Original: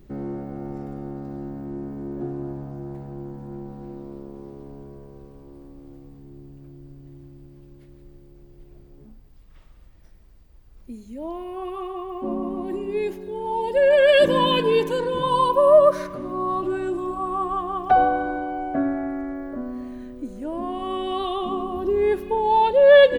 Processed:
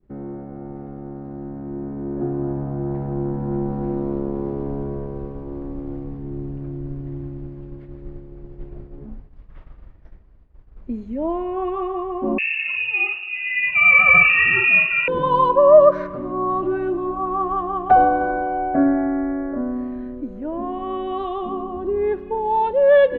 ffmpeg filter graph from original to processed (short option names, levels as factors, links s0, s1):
-filter_complex "[0:a]asettb=1/sr,asplit=3[s0][s1][s2];[s0]atrim=end=12.384[s3];[s1]atrim=start=12.38:end=15.08,asetpts=PTS-STARTPTS,afade=t=in:d=0.004:c=qsin,afade=t=out:st=2.696:d=0.004:c=qsin,lowshelf=f=380:g=10,asplit=2[s4][s5];[s5]adelay=49,volume=0.708[s6];[s4][s6]amix=inputs=2:normalize=0,atrim=end_sample=119070,lowpass=f=2500:t=q:w=0.5098,lowpass=f=2500:t=q:w=0.6013,lowpass=f=2500:t=q:w=0.9,lowpass=f=2500:t=q:w=2.563,afreqshift=-2900[s7];[s2]atrim=start=15.076[s8];[s3][s7]acrossfade=d=0.004:c1=hsin:c2=qsin[s9];[s9][s8]acrossfade=d=0.004:c1=qsin:c2=hsin,asettb=1/sr,asplit=3[s10][s11][s12];[s10]atrim=end=18.184[s13];[s11]atrim=start=18.18:end=20.21,asetpts=PTS-STARTPTS,afade=t=in:d=0.004:c=qsin,afade=t=out:st=2.026:d=0.004:c=qsin,bandreject=f=1200:w=23,asplit=2[s14][s15];[s15]adelay=32,volume=0.447[s16];[s14][s16]amix=inputs=2:normalize=0,atrim=end_sample=89523[s17];[s12]atrim=start=20.206[s18];[s13][s17]acrossfade=d=0.004:c1=hsin:c2=qsin[s19];[s19][s18]acrossfade=d=0.004:c1=qsin:c2=hsin,agate=range=0.0224:threshold=0.00794:ratio=3:detection=peak,lowpass=1800,dynaudnorm=f=340:g=17:m=6.31,volume=0.841"